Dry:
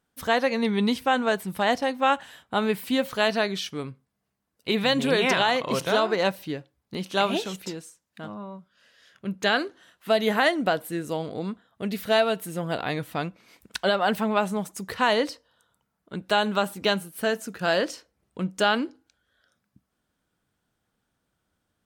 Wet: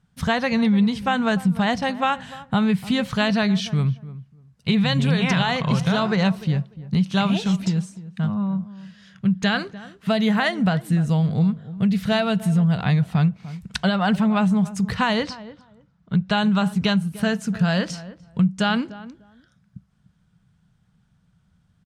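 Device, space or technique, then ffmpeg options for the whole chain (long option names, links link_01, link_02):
jukebox: -filter_complex "[0:a]asettb=1/sr,asplit=3[link_01][link_02][link_03];[link_01]atrim=end=15.234[link_04];[link_02]atrim=start=15.23:end=16.37,asetpts=PTS-STARTPTS,afade=type=in:duration=0.004:curve=qsin,afade=type=out:start_time=1.136:duration=0.004:curve=qsin,lowpass=6100[link_05];[link_03]atrim=start=16.366[link_06];[link_04][link_05]acrossfade=duration=0.004:curve1=hsin:curve2=qsin[link_07];[link_07][link_06]acrossfade=duration=0.004:curve1=qsin:curve2=hsin,lowpass=7800,lowshelf=frequency=230:width_type=q:width=3:gain=10.5,equalizer=frequency=560:width_type=o:width=0.33:gain=-4,acompressor=threshold=-22dB:ratio=4,asplit=2[link_08][link_09];[link_09]adelay=297,lowpass=frequency=1100:poles=1,volume=-15.5dB,asplit=2[link_10][link_11];[link_11]adelay=297,lowpass=frequency=1100:poles=1,volume=0.19[link_12];[link_08][link_10][link_12]amix=inputs=3:normalize=0,volume=5dB"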